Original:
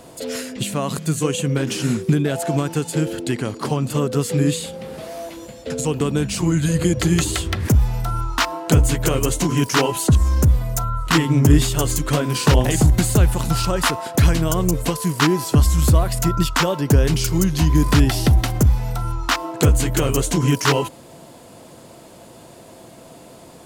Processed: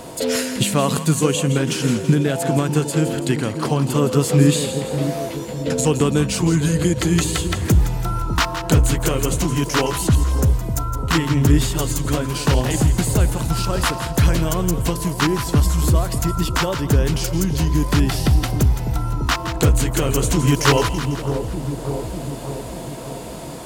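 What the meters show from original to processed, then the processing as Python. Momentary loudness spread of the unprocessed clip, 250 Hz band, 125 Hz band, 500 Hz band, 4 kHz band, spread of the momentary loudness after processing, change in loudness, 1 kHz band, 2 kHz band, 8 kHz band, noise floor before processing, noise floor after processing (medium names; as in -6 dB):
9 LU, +0.5 dB, 0.0 dB, +1.5 dB, +0.5 dB, 8 LU, -0.5 dB, 0.0 dB, 0.0 dB, +0.5 dB, -43 dBFS, -30 dBFS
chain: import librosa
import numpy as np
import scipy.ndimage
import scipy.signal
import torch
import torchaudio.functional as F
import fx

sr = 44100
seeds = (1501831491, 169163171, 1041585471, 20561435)

y = fx.echo_split(x, sr, split_hz=820.0, low_ms=599, high_ms=166, feedback_pct=52, wet_db=-10.0)
y = fx.rider(y, sr, range_db=10, speed_s=2.0)
y = y + 10.0 ** (-46.0 / 20.0) * np.sin(2.0 * np.pi * 940.0 * np.arange(len(y)) / sr)
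y = F.gain(torch.from_numpy(y), -1.0).numpy()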